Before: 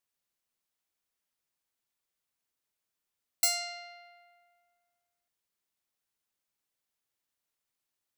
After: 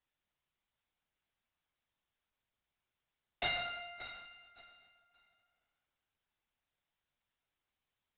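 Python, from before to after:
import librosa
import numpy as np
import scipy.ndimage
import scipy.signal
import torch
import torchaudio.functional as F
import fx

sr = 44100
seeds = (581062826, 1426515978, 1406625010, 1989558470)

p1 = fx.doubler(x, sr, ms=35.0, db=-9.5)
p2 = p1 + fx.echo_feedback(p1, sr, ms=572, feedback_pct=23, wet_db=-12, dry=0)
p3 = 10.0 ** (-20.0 / 20.0) * (np.abs((p2 / 10.0 ** (-20.0 / 20.0) + 3.0) % 4.0 - 2.0) - 1.0)
p4 = fx.lpc_vocoder(p3, sr, seeds[0], excitation='whisper', order=10)
y = p4 * librosa.db_to_amplitude(2.0)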